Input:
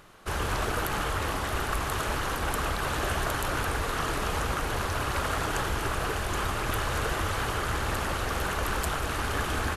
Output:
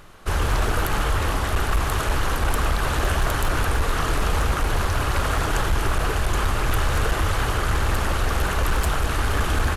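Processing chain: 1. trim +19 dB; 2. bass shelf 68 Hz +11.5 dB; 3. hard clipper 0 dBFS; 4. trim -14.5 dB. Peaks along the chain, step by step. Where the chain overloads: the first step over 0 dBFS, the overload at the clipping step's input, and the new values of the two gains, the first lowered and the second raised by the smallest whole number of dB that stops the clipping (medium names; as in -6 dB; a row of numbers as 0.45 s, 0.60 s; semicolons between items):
+8.5 dBFS, +9.5 dBFS, 0.0 dBFS, -14.5 dBFS; step 1, 9.5 dB; step 1 +9 dB, step 4 -4.5 dB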